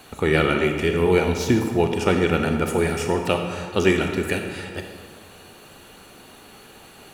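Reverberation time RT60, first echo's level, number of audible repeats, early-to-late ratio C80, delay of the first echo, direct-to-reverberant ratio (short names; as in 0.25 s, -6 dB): 1.7 s, none, none, 6.5 dB, none, 4.0 dB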